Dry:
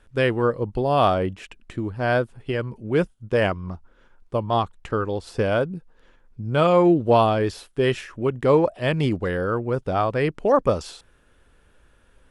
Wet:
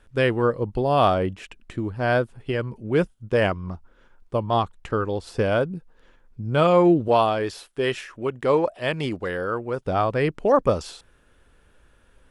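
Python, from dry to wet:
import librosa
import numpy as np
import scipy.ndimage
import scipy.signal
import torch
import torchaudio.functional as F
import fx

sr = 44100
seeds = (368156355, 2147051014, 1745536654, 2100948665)

y = fx.low_shelf(x, sr, hz=280.0, db=-9.5, at=(7.08, 9.85))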